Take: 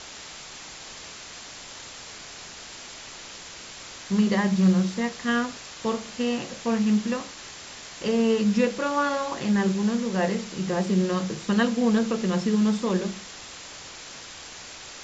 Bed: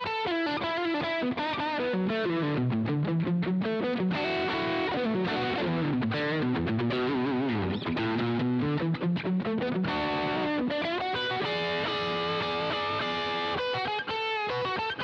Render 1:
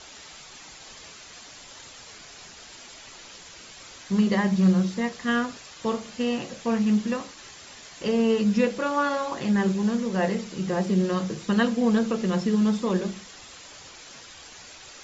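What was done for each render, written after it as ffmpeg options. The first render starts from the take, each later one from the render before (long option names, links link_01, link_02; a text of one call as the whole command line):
ffmpeg -i in.wav -af "afftdn=noise_reduction=7:noise_floor=-42" out.wav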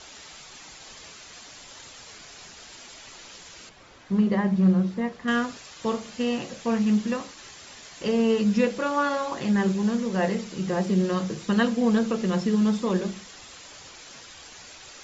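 ffmpeg -i in.wav -filter_complex "[0:a]asettb=1/sr,asplit=3[link_01][link_02][link_03];[link_01]atrim=end=3.694[link_04];[link_02]atrim=start=3.69:end=5.28,asetpts=PTS-STARTPTS,afade=type=in:duration=0.004:curve=qsin,afade=type=out:start_time=1.586:duration=0.004:curve=qsin,lowpass=frequency=1300:poles=1[link_05];[link_03]atrim=start=5.276[link_06];[link_04][link_05]acrossfade=duration=0.004:curve1=hsin:curve2=qsin[link_07];[link_07][link_06]acrossfade=duration=0.004:curve1=qsin:curve2=hsin" out.wav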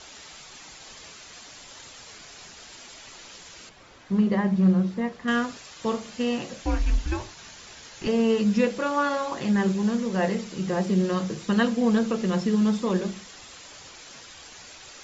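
ffmpeg -i in.wav -filter_complex "[0:a]asettb=1/sr,asplit=3[link_01][link_02][link_03];[link_01]atrim=end=6.624[link_04];[link_02]atrim=start=6.62:end=8.07,asetpts=PTS-STARTPTS,afade=type=in:duration=0.004:curve=qsin,afade=type=out:start_time=1.446:duration=0.004:curve=qsin,afreqshift=-170[link_05];[link_03]atrim=start=8.066[link_06];[link_04][link_05]acrossfade=duration=0.004:curve1=hsin:curve2=qsin[link_07];[link_07][link_06]acrossfade=duration=0.004:curve1=qsin:curve2=hsin" out.wav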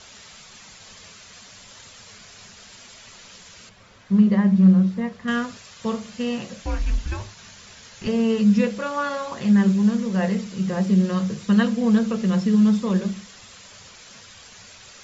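ffmpeg -i in.wav -af "equalizer=frequency=100:width_type=o:width=0.33:gain=9,equalizer=frequency=200:width_type=o:width=0.33:gain=8,equalizer=frequency=315:width_type=o:width=0.33:gain=-10,equalizer=frequency=800:width_type=o:width=0.33:gain=-4" out.wav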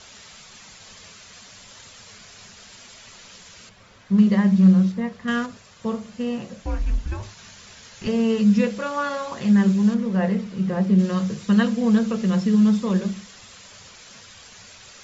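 ffmpeg -i in.wav -filter_complex "[0:a]asettb=1/sr,asplit=3[link_01][link_02][link_03];[link_01]atrim=end=4.184[link_04];[link_02]atrim=start=4.18:end=4.92,asetpts=PTS-STARTPTS,afade=type=in:duration=0.004:curve=qsin,afade=type=out:start_time=0.736:duration=0.004:curve=qsin,highshelf=frequency=3000:gain=9[link_05];[link_03]atrim=start=4.916[link_06];[link_04][link_05]acrossfade=duration=0.004:curve1=hsin:curve2=qsin[link_07];[link_07][link_06]acrossfade=duration=0.004:curve1=qsin:curve2=hsin,asettb=1/sr,asplit=3[link_08][link_09][link_10];[link_08]atrim=end=5.464[link_11];[link_09]atrim=start=5.46:end=7.23,asetpts=PTS-STARTPTS,afade=type=in:duration=0.004:curve=qsin,afade=type=out:start_time=1.766:duration=0.004:curve=qsin,equalizer=frequency=4700:width=0.32:gain=-7[link_12];[link_10]atrim=start=7.226[link_13];[link_11][link_12]acrossfade=duration=0.004:curve1=hsin:curve2=qsin[link_14];[link_14][link_13]acrossfade=duration=0.004:curve1=qsin:curve2=hsin,asettb=1/sr,asplit=3[link_15][link_16][link_17];[link_15]atrim=end=9.944[link_18];[link_16]atrim=start=9.94:end=10.99,asetpts=PTS-STARTPTS,afade=type=in:duration=0.004:curve=qsin,afade=type=out:start_time=1.046:duration=0.004:curve=qsin,aemphasis=mode=reproduction:type=75fm[link_19];[link_17]atrim=start=10.986[link_20];[link_18][link_19]acrossfade=duration=0.004:curve1=hsin:curve2=qsin[link_21];[link_21][link_20]acrossfade=duration=0.004:curve1=qsin:curve2=hsin" out.wav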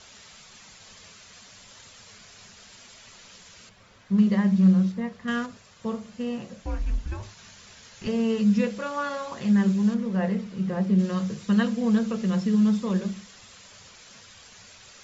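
ffmpeg -i in.wav -af "volume=-4dB" out.wav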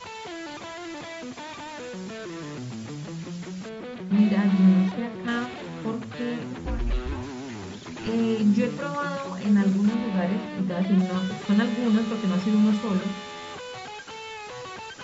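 ffmpeg -i in.wav -i bed.wav -filter_complex "[1:a]volume=-8dB[link_01];[0:a][link_01]amix=inputs=2:normalize=0" out.wav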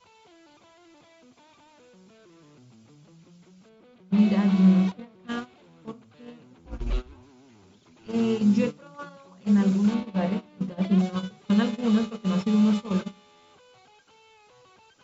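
ffmpeg -i in.wav -af "agate=range=-18dB:threshold=-25dB:ratio=16:detection=peak,equalizer=frequency=1800:width_type=o:width=0.27:gain=-8" out.wav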